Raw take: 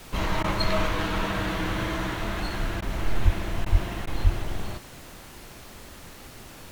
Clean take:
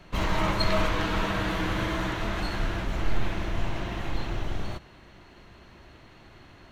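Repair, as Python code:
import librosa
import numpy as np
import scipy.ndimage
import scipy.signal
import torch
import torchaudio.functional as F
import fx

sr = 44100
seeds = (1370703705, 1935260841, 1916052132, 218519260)

y = fx.highpass(x, sr, hz=140.0, slope=24, at=(3.24, 3.36), fade=0.02)
y = fx.highpass(y, sr, hz=140.0, slope=24, at=(3.71, 3.83), fade=0.02)
y = fx.highpass(y, sr, hz=140.0, slope=24, at=(4.23, 4.35), fade=0.02)
y = fx.fix_interpolate(y, sr, at_s=(0.43, 2.81, 3.65, 4.06), length_ms=10.0)
y = fx.noise_reduce(y, sr, print_start_s=6.11, print_end_s=6.61, reduce_db=7.0)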